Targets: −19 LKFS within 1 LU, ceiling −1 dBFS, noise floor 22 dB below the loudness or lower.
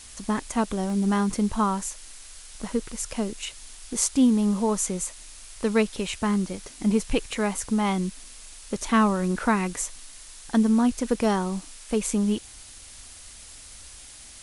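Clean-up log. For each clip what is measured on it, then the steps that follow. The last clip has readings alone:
number of dropouts 1; longest dropout 1.4 ms; background noise floor −45 dBFS; target noise floor −48 dBFS; integrated loudness −25.5 LKFS; sample peak −5.5 dBFS; target loudness −19.0 LKFS
→ repair the gap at 0:00.90, 1.4 ms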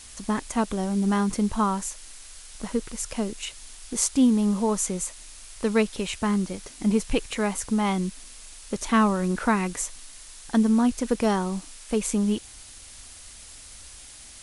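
number of dropouts 0; background noise floor −45 dBFS; target noise floor −48 dBFS
→ noise reduction from a noise print 6 dB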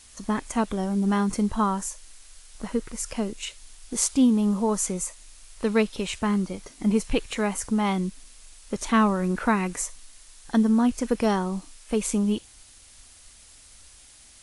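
background noise floor −51 dBFS; integrated loudness −25.5 LKFS; sample peak −5.5 dBFS; target loudness −19.0 LKFS
→ level +6.5 dB
brickwall limiter −1 dBFS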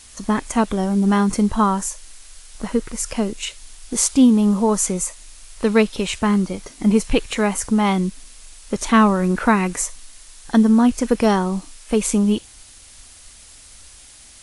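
integrated loudness −19.0 LKFS; sample peak −1.0 dBFS; background noise floor −45 dBFS

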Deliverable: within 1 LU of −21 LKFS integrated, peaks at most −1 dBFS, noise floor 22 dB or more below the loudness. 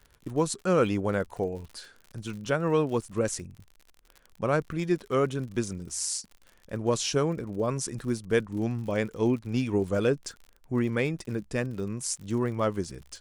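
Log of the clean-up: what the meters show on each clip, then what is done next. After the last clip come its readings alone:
crackle rate 59 per second; integrated loudness −29.0 LKFS; sample peak −10.0 dBFS; target loudness −21.0 LKFS
→ click removal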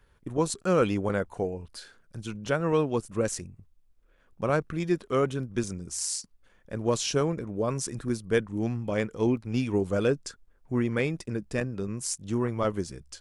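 crackle rate 0.23 per second; integrated loudness −29.0 LKFS; sample peak −10.0 dBFS; target loudness −21.0 LKFS
→ level +8 dB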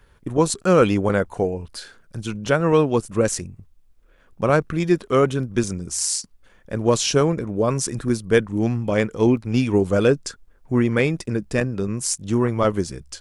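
integrated loudness −21.0 LKFS; sample peak −2.0 dBFS; background noise floor −55 dBFS

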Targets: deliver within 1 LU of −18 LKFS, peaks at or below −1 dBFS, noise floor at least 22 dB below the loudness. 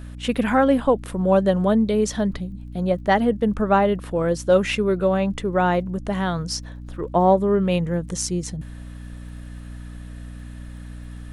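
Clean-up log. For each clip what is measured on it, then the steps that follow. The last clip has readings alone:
crackle rate 42 per second; mains hum 60 Hz; hum harmonics up to 300 Hz; level of the hum −34 dBFS; integrated loudness −21.0 LKFS; sample peak −6.0 dBFS; target loudness −18.0 LKFS
→ click removal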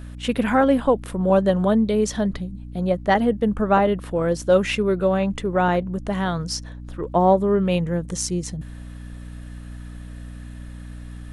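crackle rate 0.088 per second; mains hum 60 Hz; hum harmonics up to 300 Hz; level of the hum −34 dBFS
→ hum removal 60 Hz, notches 5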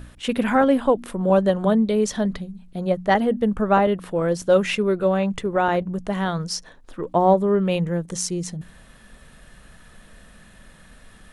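mains hum none found; integrated loudness −21.5 LKFS; sample peak −5.5 dBFS; target loudness −18.0 LKFS
→ level +3.5 dB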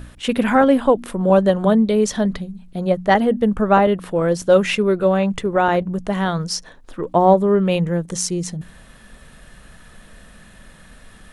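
integrated loudness −18.0 LKFS; sample peak −2.0 dBFS; background noise floor −46 dBFS

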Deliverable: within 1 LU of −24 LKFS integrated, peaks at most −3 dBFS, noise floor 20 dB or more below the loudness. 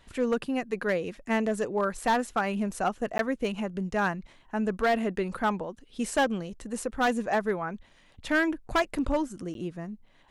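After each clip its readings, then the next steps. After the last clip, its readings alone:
share of clipped samples 1.0%; peaks flattened at −19.0 dBFS; number of dropouts 2; longest dropout 12 ms; integrated loudness −29.5 LKFS; sample peak −19.0 dBFS; target loudness −24.0 LKFS
→ clipped peaks rebuilt −19 dBFS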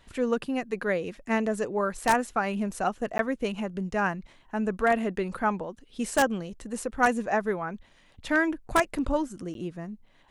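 share of clipped samples 0.0%; number of dropouts 2; longest dropout 12 ms
→ repair the gap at 0:03.18/0:09.54, 12 ms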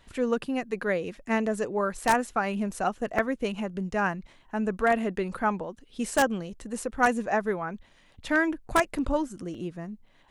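number of dropouts 0; integrated loudness −28.5 LKFS; sample peak −10.0 dBFS; target loudness −24.0 LKFS
→ level +4.5 dB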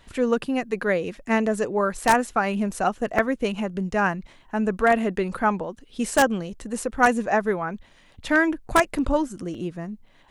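integrated loudness −24.0 LKFS; sample peak −5.5 dBFS; background noise floor −55 dBFS

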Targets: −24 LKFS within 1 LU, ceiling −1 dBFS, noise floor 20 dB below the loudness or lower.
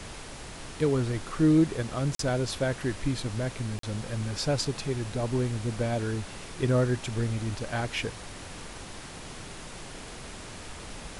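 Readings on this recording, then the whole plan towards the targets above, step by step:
number of dropouts 2; longest dropout 43 ms; background noise floor −43 dBFS; target noise floor −49 dBFS; integrated loudness −29.0 LKFS; sample peak −13.0 dBFS; target loudness −24.0 LKFS
→ repair the gap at 0:02.15/0:03.79, 43 ms
noise reduction from a noise print 6 dB
level +5 dB

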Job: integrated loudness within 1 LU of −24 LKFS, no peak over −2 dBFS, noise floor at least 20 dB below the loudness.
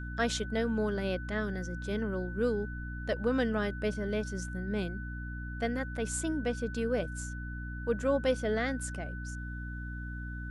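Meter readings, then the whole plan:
mains hum 60 Hz; hum harmonics up to 300 Hz; level of the hum −37 dBFS; interfering tone 1,500 Hz; level of the tone −44 dBFS; integrated loudness −34.0 LKFS; sample peak −16.0 dBFS; target loudness −24.0 LKFS
→ hum removal 60 Hz, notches 5
notch filter 1,500 Hz, Q 30
level +10 dB

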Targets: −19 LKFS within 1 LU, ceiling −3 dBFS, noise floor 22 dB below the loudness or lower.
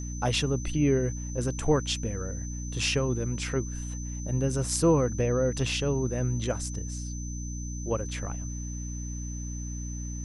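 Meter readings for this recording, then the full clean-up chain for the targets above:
mains hum 60 Hz; hum harmonics up to 300 Hz; level of the hum −33 dBFS; interfering tone 6,100 Hz; level of the tone −42 dBFS; integrated loudness −29.5 LKFS; sample peak −10.5 dBFS; target loudness −19.0 LKFS
→ hum removal 60 Hz, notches 5
notch filter 6,100 Hz, Q 30
level +10.5 dB
brickwall limiter −3 dBFS

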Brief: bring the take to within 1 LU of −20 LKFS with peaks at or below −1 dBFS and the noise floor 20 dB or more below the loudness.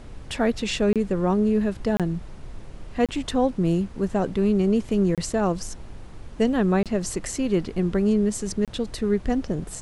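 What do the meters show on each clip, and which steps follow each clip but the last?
number of dropouts 6; longest dropout 27 ms; background noise floor −41 dBFS; target noise floor −44 dBFS; integrated loudness −24.0 LKFS; sample peak −8.0 dBFS; target loudness −20.0 LKFS
→ repair the gap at 0:00.93/0:01.97/0:03.06/0:05.15/0:06.83/0:08.65, 27 ms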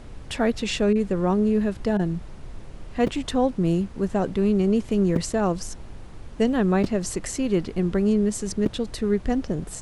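number of dropouts 0; background noise floor −41 dBFS; target noise floor −44 dBFS
→ noise reduction from a noise print 6 dB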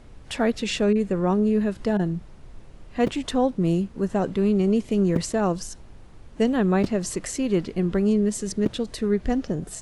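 background noise floor −46 dBFS; integrated loudness −24.0 LKFS; sample peak −7.5 dBFS; target loudness −20.0 LKFS
→ level +4 dB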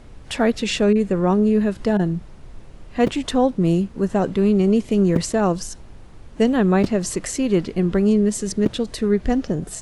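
integrated loudness −20.0 LKFS; sample peak −3.5 dBFS; background noise floor −42 dBFS

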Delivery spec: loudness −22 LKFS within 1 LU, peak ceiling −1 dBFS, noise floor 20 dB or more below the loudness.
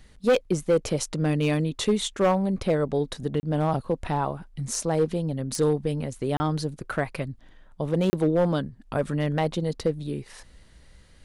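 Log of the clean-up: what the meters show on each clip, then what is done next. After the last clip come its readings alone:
share of clipped samples 1.0%; peaks flattened at −15.0 dBFS; number of dropouts 3; longest dropout 30 ms; integrated loudness −26.5 LKFS; sample peak −15.0 dBFS; target loudness −22.0 LKFS
→ clipped peaks rebuilt −15 dBFS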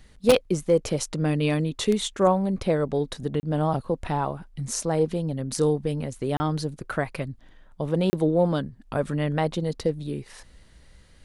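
share of clipped samples 0.0%; number of dropouts 3; longest dropout 30 ms
→ repair the gap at 0:03.40/0:06.37/0:08.10, 30 ms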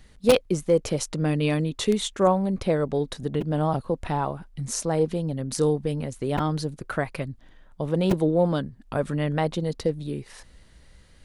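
number of dropouts 0; integrated loudness −25.5 LKFS; sample peak −6.0 dBFS; target loudness −22.0 LKFS
→ level +3.5 dB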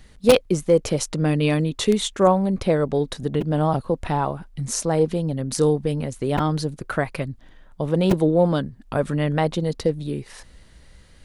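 integrated loudness −22.0 LKFS; sample peak −2.5 dBFS; background noise floor −50 dBFS

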